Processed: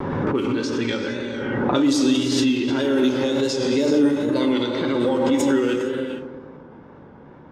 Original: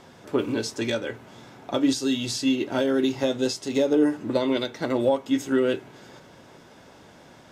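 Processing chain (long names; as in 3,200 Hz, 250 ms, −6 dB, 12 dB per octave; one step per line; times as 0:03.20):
low-pass that shuts in the quiet parts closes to 960 Hz, open at −18 dBFS
parametric band 660 Hz −13 dB 0.36 octaves
reverb whose tail is shaped and stops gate 480 ms flat, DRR 4.5 dB
in parallel at −1 dB: brickwall limiter −31 dBFS, peak gain reduction 20.5 dB
on the sum: tape wow and flutter 66 cents
on a send: bucket-brigade delay 119 ms, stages 1,024, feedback 64%, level −7 dB
on the sum: background raised ahead of every attack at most 25 dB per second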